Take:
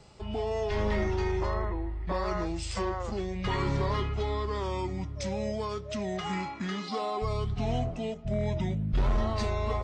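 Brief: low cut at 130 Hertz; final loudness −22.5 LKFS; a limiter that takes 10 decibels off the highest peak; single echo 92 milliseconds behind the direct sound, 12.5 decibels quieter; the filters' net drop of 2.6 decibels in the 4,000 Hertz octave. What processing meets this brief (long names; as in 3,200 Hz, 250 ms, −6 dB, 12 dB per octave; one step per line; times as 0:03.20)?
high-pass filter 130 Hz
parametric band 4,000 Hz −3.5 dB
brickwall limiter −29 dBFS
single-tap delay 92 ms −12.5 dB
level +15 dB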